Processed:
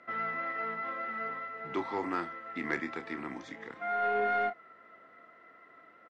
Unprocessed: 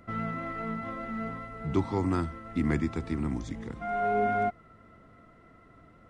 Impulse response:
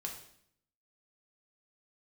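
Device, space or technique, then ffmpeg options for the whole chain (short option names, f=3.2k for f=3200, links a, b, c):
intercom: -filter_complex "[0:a]highpass=450,lowpass=4.2k,equalizer=f=1.8k:t=o:w=0.54:g=7,asoftclip=type=tanh:threshold=-18.5dB,asplit=2[a][b];[b]adelay=29,volume=-10dB[c];[a][c]amix=inputs=2:normalize=0"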